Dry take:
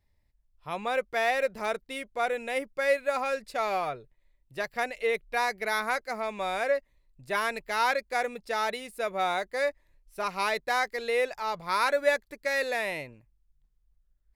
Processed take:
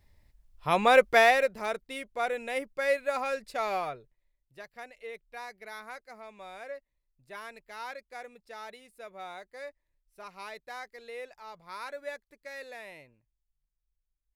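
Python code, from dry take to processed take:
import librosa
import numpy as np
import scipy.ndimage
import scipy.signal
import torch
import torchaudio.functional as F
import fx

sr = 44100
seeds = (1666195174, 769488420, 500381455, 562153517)

y = fx.gain(x, sr, db=fx.line((1.14, 9.0), (1.55, -2.0), (3.79, -2.0), (4.68, -14.5)))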